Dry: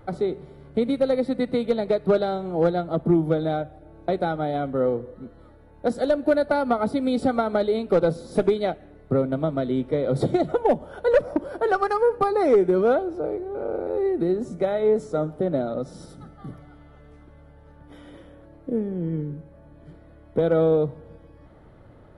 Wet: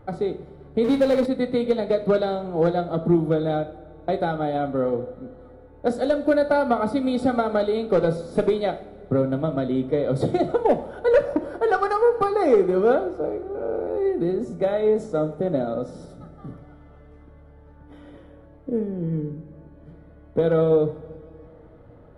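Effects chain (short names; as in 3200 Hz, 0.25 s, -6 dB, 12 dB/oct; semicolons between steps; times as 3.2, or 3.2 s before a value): two-slope reverb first 0.47 s, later 3.5 s, from -18 dB, DRR 8 dB; 0.84–1.26 power-law curve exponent 0.7; mismatched tape noise reduction decoder only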